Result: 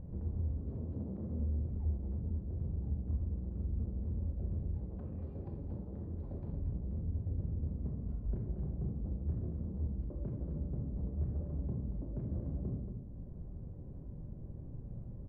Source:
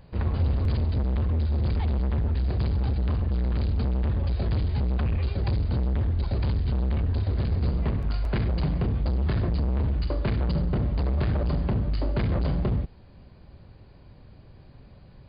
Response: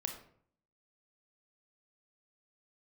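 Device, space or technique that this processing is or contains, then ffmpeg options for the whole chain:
television next door: -filter_complex "[0:a]asettb=1/sr,asplit=3[a][b][c];[a]atrim=end=0.614[d];[b]atrim=start=0.61:end=1.4,asetpts=PTS-STARTPTS,afade=t=in:d=0.004:c=qsin,afade=t=out:st=0.786:d=0.004:c=qsin,highpass=150[e];[c]atrim=start=1.396[f];[d][e]acrossfade=d=0.004:c1=hsin:c2=qsin[g];[g][f]acrossfade=d=0.004:c1=qsin:c2=hsin,asettb=1/sr,asplit=3[h][i][j];[h]atrim=end=4.754[k];[i]atrim=start=4.75:end=6.53,asetpts=PTS-STARTPTS,afade=t=in:d=0.004:c=qsin,afade=t=out:st=1.776:d=0.004:c=qsin,aemphasis=mode=production:type=bsi[l];[j]atrim=start=6.526[m];[k][l]acrossfade=d=0.004:c1=hsin:c2=qsin[n];[n][m]acrossfade=d=0.004:c1=qsin:c2=hsin,acompressor=threshold=-55dB:ratio=3,lowpass=400[o];[1:a]atrim=start_sample=2205[p];[o][p]afir=irnorm=-1:irlink=0,aecho=1:1:230:0.447,volume=10dB"

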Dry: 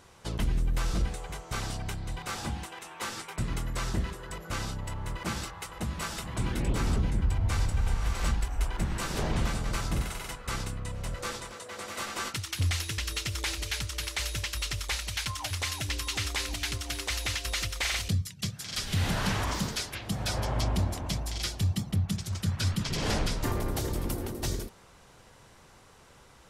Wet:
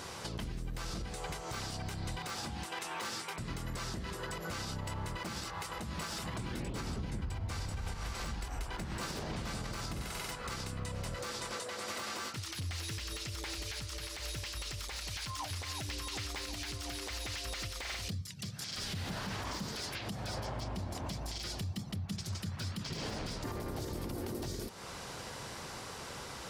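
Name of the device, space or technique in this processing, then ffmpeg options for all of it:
broadcast voice chain: -af "highpass=f=96:p=1,deesser=0.9,acompressor=threshold=-48dB:ratio=4,equalizer=f=4.8k:t=o:w=0.52:g=5,alimiter=level_in=17dB:limit=-24dB:level=0:latency=1:release=138,volume=-17dB,volume=11.5dB"

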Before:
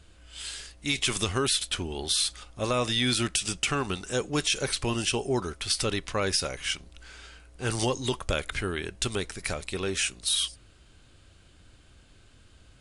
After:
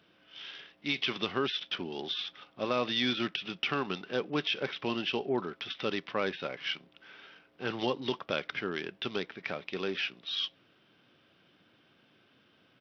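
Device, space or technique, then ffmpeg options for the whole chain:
Bluetooth headset: -af "highpass=f=160:w=0.5412,highpass=f=160:w=1.3066,aresample=8000,aresample=44100,volume=-3dB" -ar 44100 -c:a sbc -b:a 64k

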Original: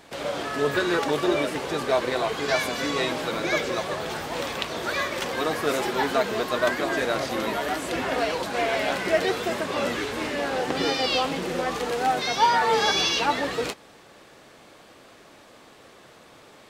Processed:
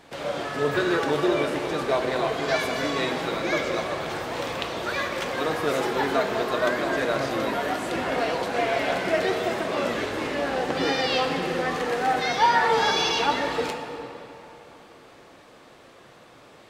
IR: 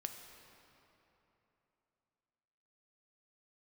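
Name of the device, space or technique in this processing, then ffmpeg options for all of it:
swimming-pool hall: -filter_complex "[1:a]atrim=start_sample=2205[a];[0:a][a]afir=irnorm=-1:irlink=0,highshelf=f=4.7k:g=-5,asettb=1/sr,asplit=3[b][c][d];[b]atrim=end=10.864[e];[c]atrim=start=10.86:end=12.68,asetpts=PTS-STARTPTS,afade=t=in:d=0.004:c=qsin,afade=t=out:st=1.816:d=0.004:c=qsin,equalizer=f=1.8k:t=o:w=0.4:g=5.5[f];[d]atrim=start=12.676[g];[e][f]acrossfade=d=0.004:c1=hsin:c2=qsin[h];[h][g]acrossfade=d=0.004:c1=qsin:c2=hsin,volume=2.5dB"

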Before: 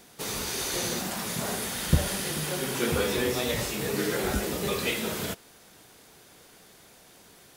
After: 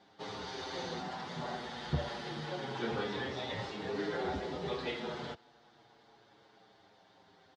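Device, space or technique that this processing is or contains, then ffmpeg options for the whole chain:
barber-pole flanger into a guitar amplifier: -filter_complex "[0:a]asplit=2[a][b];[b]adelay=7.1,afreqshift=-0.29[c];[a][c]amix=inputs=2:normalize=1,asoftclip=type=tanh:threshold=-15dB,highpass=86,equalizer=f=200:t=q:w=4:g=-3,equalizer=f=820:t=q:w=4:g=8,equalizer=f=2.5k:t=q:w=4:g=-8,lowpass=f=4.3k:w=0.5412,lowpass=f=4.3k:w=1.3066,volume=-4.5dB"

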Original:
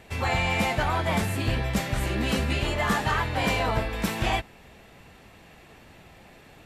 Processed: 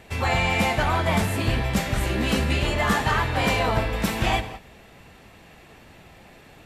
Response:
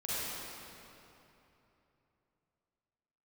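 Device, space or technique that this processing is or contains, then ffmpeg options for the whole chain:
keyed gated reverb: -filter_complex "[0:a]asplit=3[a][b][c];[1:a]atrim=start_sample=2205[d];[b][d]afir=irnorm=-1:irlink=0[e];[c]apad=whole_len=293652[f];[e][f]sidechaingate=range=-33dB:threshold=-45dB:ratio=16:detection=peak,volume=-16dB[g];[a][g]amix=inputs=2:normalize=0,volume=2dB"

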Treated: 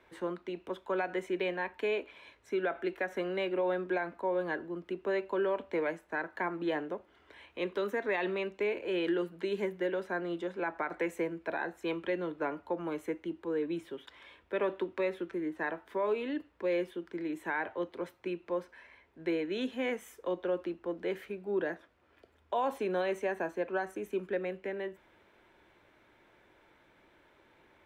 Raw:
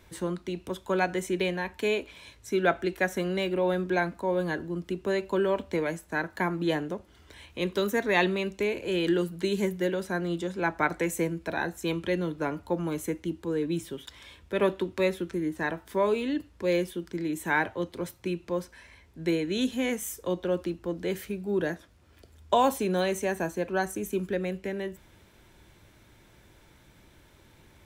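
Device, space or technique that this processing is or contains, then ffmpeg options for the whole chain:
DJ mixer with the lows and highs turned down: -filter_complex "[0:a]acrossover=split=290 3000:gain=0.158 1 0.126[a][b][c];[a][b][c]amix=inputs=3:normalize=0,alimiter=limit=-21.5dB:level=0:latency=1:release=81,volume=-1.5dB"

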